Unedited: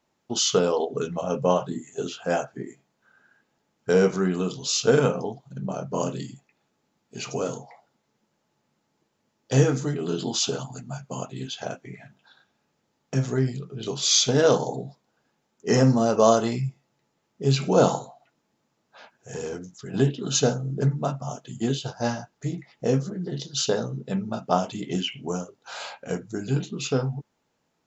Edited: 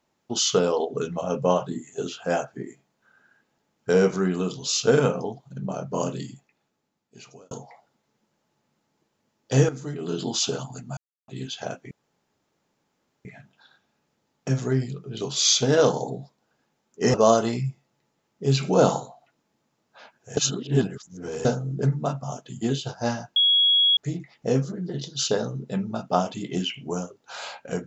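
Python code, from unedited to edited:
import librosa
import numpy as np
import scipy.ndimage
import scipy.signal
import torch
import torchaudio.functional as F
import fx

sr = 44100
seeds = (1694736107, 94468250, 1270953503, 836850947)

y = fx.edit(x, sr, fx.fade_out_span(start_s=6.31, length_s=1.2),
    fx.fade_in_from(start_s=9.69, length_s=0.53, floor_db=-12.5),
    fx.silence(start_s=10.97, length_s=0.31),
    fx.insert_room_tone(at_s=11.91, length_s=1.34),
    fx.cut(start_s=15.8, length_s=0.33),
    fx.reverse_span(start_s=19.36, length_s=1.08),
    fx.insert_tone(at_s=22.35, length_s=0.61, hz=3330.0, db=-15.5), tone=tone)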